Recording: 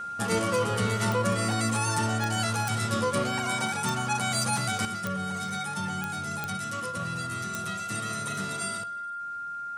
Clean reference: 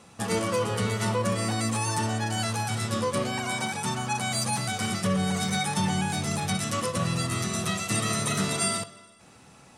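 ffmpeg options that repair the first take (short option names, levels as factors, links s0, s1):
-af "adeclick=t=4,bandreject=f=1400:w=30,asetnsamples=n=441:p=0,asendcmd='4.85 volume volume 8dB',volume=1"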